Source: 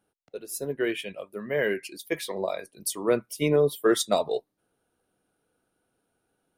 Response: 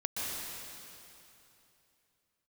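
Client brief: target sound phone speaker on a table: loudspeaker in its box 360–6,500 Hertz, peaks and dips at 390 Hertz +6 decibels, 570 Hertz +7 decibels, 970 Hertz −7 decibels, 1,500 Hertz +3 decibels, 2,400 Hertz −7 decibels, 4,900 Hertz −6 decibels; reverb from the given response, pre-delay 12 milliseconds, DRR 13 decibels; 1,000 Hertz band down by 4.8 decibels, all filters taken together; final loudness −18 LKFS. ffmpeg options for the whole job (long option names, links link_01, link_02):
-filter_complex "[0:a]equalizer=frequency=1000:width_type=o:gain=-8.5,asplit=2[link_01][link_02];[1:a]atrim=start_sample=2205,adelay=12[link_03];[link_02][link_03]afir=irnorm=-1:irlink=0,volume=-18.5dB[link_04];[link_01][link_04]amix=inputs=2:normalize=0,highpass=frequency=360:width=0.5412,highpass=frequency=360:width=1.3066,equalizer=frequency=390:width_type=q:width=4:gain=6,equalizer=frequency=570:width_type=q:width=4:gain=7,equalizer=frequency=970:width_type=q:width=4:gain=-7,equalizer=frequency=1500:width_type=q:width=4:gain=3,equalizer=frequency=2400:width_type=q:width=4:gain=-7,equalizer=frequency=4900:width_type=q:width=4:gain=-6,lowpass=frequency=6500:width=0.5412,lowpass=frequency=6500:width=1.3066,volume=8.5dB"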